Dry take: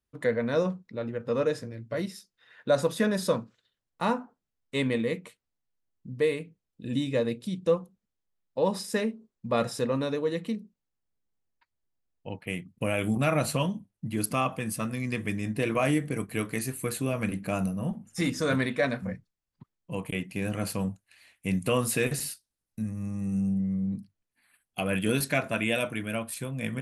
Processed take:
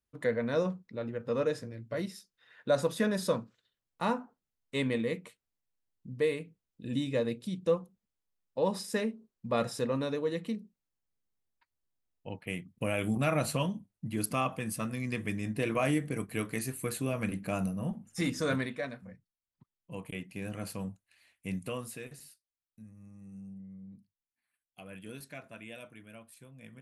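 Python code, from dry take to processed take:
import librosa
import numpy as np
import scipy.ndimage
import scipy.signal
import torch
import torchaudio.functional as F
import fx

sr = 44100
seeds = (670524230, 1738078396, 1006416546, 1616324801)

y = fx.gain(x, sr, db=fx.line((18.49, -3.5), (19.06, -15.5), (19.96, -8.0), (21.54, -8.0), (22.1, -19.0)))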